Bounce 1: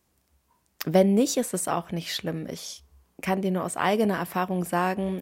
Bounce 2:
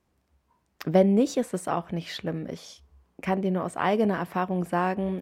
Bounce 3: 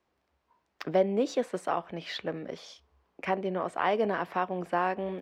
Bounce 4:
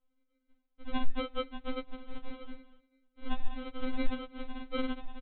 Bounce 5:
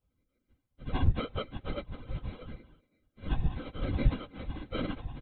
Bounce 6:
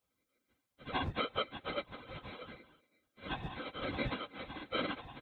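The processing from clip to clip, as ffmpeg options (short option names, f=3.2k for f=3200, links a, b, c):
-af "lowpass=f=2.2k:p=1"
-filter_complex "[0:a]acrossover=split=330 5500:gain=0.251 1 0.178[a][b][c];[a][b][c]amix=inputs=3:normalize=0,asplit=2[d][e];[e]alimiter=limit=-17dB:level=0:latency=1:release=410,volume=2.5dB[f];[d][f]amix=inputs=2:normalize=0,volume=-7dB"
-af "aresample=8000,acrusher=samples=40:mix=1:aa=0.000001,aresample=44100,afftfilt=real='re*3.46*eq(mod(b,12),0)':imag='im*3.46*eq(mod(b,12),0)':win_size=2048:overlap=0.75,volume=2dB"
-af "afftfilt=real='hypot(re,im)*cos(2*PI*random(0))':imag='hypot(re,im)*sin(2*PI*random(1))':win_size=512:overlap=0.75,volume=5.5dB"
-af "highpass=f=870:p=1,bandreject=f=2.9k:w=23,volume=5.5dB"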